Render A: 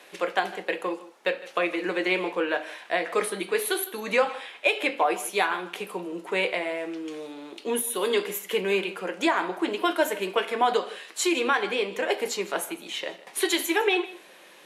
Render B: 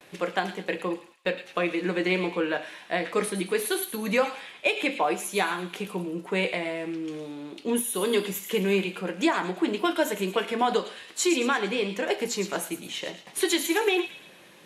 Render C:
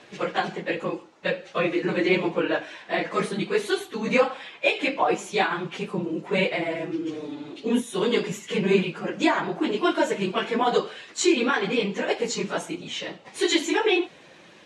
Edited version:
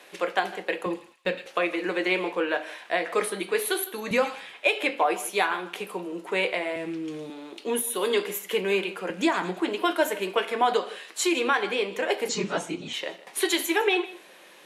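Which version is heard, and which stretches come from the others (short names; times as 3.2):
A
0.86–1.46 from B
4.11–4.53 from B
6.76–7.3 from B
9.1–9.6 from B
12.29–12.93 from C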